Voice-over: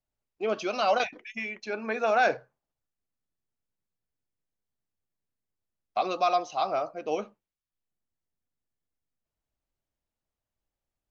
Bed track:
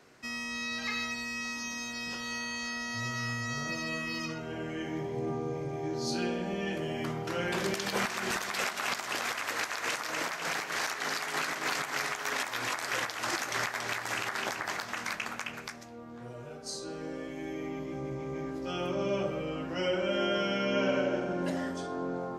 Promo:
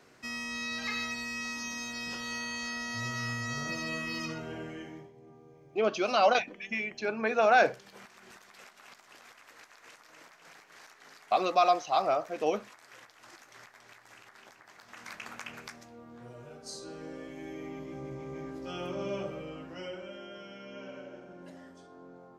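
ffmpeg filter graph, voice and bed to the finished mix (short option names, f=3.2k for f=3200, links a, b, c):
-filter_complex "[0:a]adelay=5350,volume=1dB[a];[1:a]volume=16.5dB,afade=t=out:st=4.4:d=0.73:silence=0.0944061,afade=t=in:st=14.75:d=0.78:silence=0.141254,afade=t=out:st=19.1:d=1.12:silence=0.237137[b];[a][b]amix=inputs=2:normalize=0"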